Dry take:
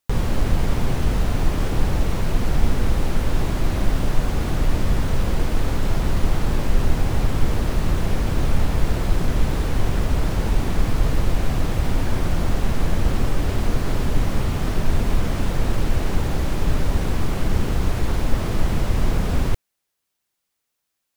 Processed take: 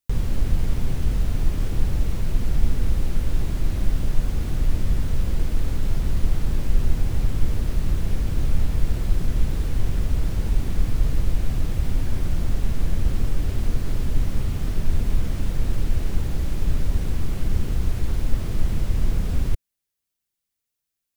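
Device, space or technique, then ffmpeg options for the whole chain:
smiley-face EQ: -af "lowshelf=f=130:g=7.5,equalizer=f=900:t=o:w=1.7:g=-5,highshelf=f=7900:g=4.5,volume=0.422"

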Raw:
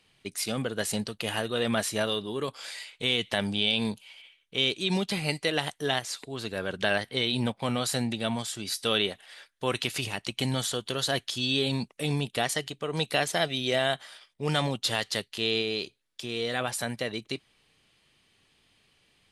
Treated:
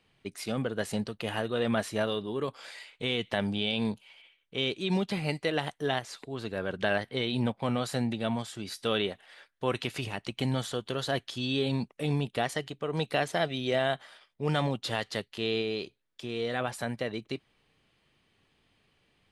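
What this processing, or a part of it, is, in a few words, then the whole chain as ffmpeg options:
through cloth: -af "highshelf=f=3100:g=-12"

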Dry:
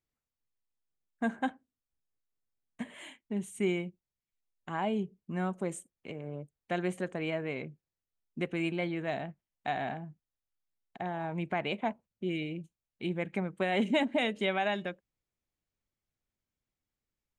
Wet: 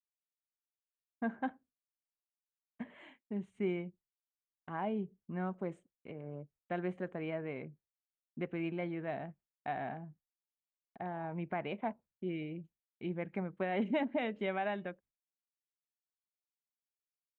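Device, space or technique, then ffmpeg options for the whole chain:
hearing-loss simulation: -af "lowpass=2000,agate=range=0.0224:threshold=0.00178:ratio=3:detection=peak,volume=0.596"

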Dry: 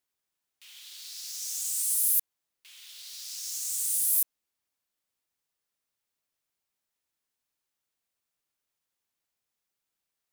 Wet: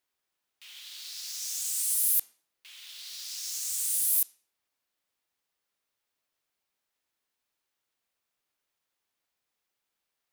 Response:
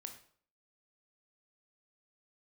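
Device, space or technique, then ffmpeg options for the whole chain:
filtered reverb send: -filter_complex "[0:a]asplit=2[s0][s1];[s1]highpass=230,lowpass=5500[s2];[1:a]atrim=start_sample=2205[s3];[s2][s3]afir=irnorm=-1:irlink=0,volume=1.06[s4];[s0][s4]amix=inputs=2:normalize=0"

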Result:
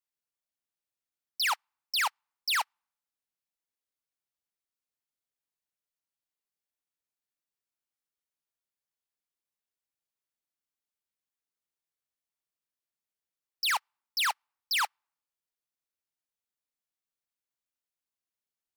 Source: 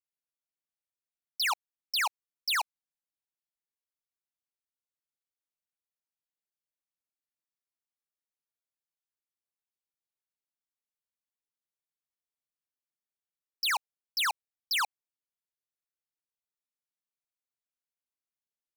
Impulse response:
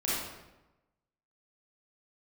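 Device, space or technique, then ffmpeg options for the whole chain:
keyed gated reverb: -filter_complex "[0:a]asplit=3[s0][s1][s2];[1:a]atrim=start_sample=2205[s3];[s1][s3]afir=irnorm=-1:irlink=0[s4];[s2]apad=whole_len=827465[s5];[s4][s5]sidechaingate=range=0.00316:threshold=0.0398:ratio=16:detection=peak,volume=0.376[s6];[s0][s6]amix=inputs=2:normalize=0"

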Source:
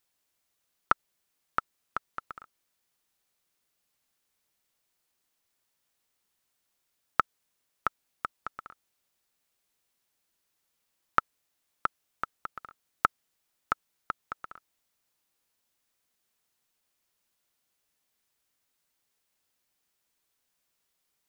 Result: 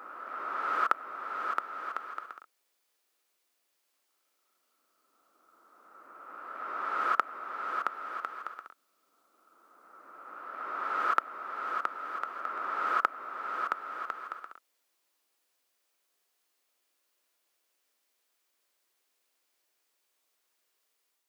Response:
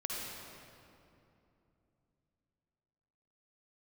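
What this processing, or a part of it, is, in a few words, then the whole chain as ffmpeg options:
ghost voice: -filter_complex "[0:a]areverse[s0];[1:a]atrim=start_sample=2205[s1];[s0][s1]afir=irnorm=-1:irlink=0,areverse,highpass=f=300:w=0.5412,highpass=f=300:w=1.3066"

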